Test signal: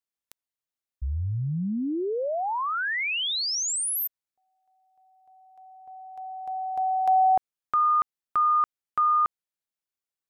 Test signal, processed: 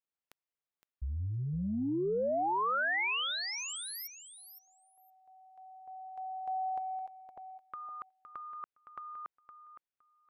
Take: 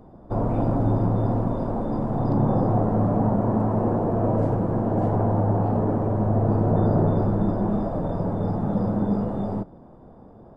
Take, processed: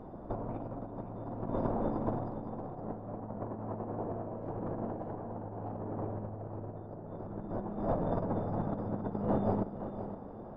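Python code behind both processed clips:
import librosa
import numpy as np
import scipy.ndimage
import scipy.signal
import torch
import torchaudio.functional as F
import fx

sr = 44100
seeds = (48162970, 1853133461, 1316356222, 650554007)

y = fx.over_compress(x, sr, threshold_db=-28.0, ratio=-0.5)
y = fx.bass_treble(y, sr, bass_db=-4, treble_db=-12)
y = fx.echo_feedback(y, sr, ms=514, feedback_pct=15, wet_db=-10.5)
y = y * 10.0 ** (-5.0 / 20.0)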